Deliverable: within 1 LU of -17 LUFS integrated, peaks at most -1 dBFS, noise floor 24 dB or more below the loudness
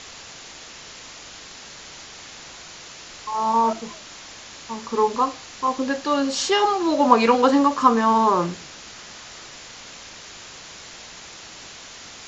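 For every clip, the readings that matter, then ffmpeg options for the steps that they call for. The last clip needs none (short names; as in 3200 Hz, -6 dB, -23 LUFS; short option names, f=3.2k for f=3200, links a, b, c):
noise floor -41 dBFS; noise floor target -44 dBFS; loudness -20.0 LUFS; peak -1.5 dBFS; loudness target -17.0 LUFS
-> -af "afftdn=nr=6:nf=-41"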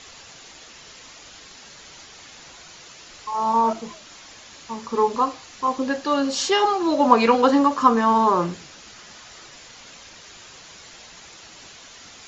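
noise floor -45 dBFS; loudness -20.0 LUFS; peak -1.5 dBFS; loudness target -17.0 LUFS
-> -af "volume=3dB,alimiter=limit=-1dB:level=0:latency=1"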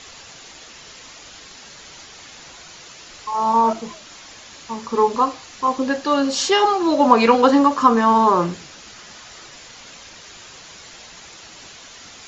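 loudness -17.5 LUFS; peak -1.0 dBFS; noise floor -42 dBFS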